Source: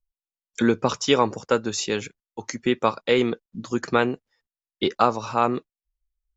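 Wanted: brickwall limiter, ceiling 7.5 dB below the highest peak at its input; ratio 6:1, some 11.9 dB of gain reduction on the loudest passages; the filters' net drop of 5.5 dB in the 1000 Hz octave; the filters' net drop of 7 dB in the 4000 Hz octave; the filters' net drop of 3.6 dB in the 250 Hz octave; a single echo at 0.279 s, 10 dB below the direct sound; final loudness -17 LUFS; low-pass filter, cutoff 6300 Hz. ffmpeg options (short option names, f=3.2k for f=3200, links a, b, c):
-af "lowpass=6.3k,equalizer=f=250:t=o:g=-4,equalizer=f=1k:t=o:g=-6.5,equalizer=f=4k:t=o:g=-8.5,acompressor=threshold=-30dB:ratio=6,alimiter=limit=-22.5dB:level=0:latency=1,aecho=1:1:279:0.316,volume=20.5dB"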